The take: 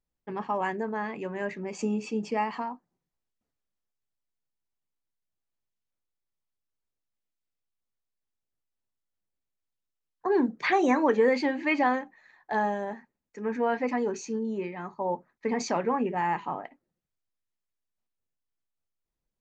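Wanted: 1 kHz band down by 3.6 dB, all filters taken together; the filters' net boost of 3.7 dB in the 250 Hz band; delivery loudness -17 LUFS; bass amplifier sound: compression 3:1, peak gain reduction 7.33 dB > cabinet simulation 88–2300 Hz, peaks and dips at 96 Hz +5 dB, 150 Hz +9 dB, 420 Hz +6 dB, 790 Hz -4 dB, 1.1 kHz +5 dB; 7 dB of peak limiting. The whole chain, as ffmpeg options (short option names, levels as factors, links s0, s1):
-af "equalizer=f=250:t=o:g=3,equalizer=f=1000:t=o:g=-4,alimiter=limit=0.119:level=0:latency=1,acompressor=threshold=0.0282:ratio=3,highpass=f=88:w=0.5412,highpass=f=88:w=1.3066,equalizer=f=96:t=q:w=4:g=5,equalizer=f=150:t=q:w=4:g=9,equalizer=f=420:t=q:w=4:g=6,equalizer=f=790:t=q:w=4:g=-4,equalizer=f=1100:t=q:w=4:g=5,lowpass=f=2300:w=0.5412,lowpass=f=2300:w=1.3066,volume=6.31"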